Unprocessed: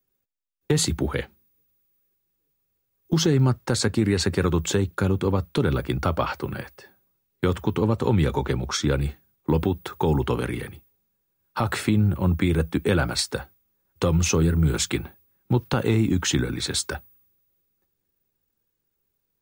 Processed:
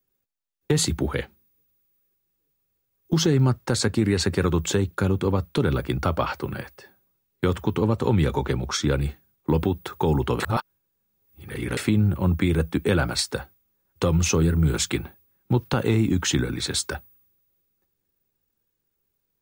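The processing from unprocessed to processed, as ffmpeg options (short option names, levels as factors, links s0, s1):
-filter_complex "[0:a]asplit=3[s0][s1][s2];[s0]atrim=end=10.402[s3];[s1]atrim=start=10.398:end=11.772,asetpts=PTS-STARTPTS,areverse[s4];[s2]atrim=start=11.768[s5];[s3][s4]acrossfade=d=0.004:c1=hsin:c2=hsin[s6];[s6][s5]acrossfade=d=0.004:c1=hsin:c2=hsin"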